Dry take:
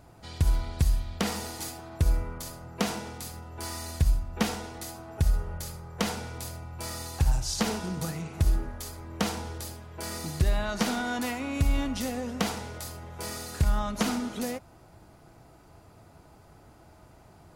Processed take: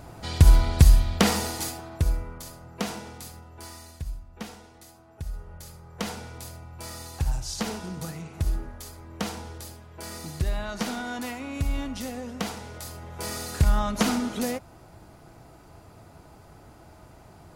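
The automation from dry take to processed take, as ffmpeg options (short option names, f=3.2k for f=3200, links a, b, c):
-af "volume=24.5dB,afade=t=out:st=1.04:d=1.13:silence=0.266073,afade=t=out:st=3.22:d=0.77:silence=0.354813,afade=t=in:st=5.28:d=0.83:silence=0.375837,afade=t=in:st=12.59:d=0.85:silence=0.473151"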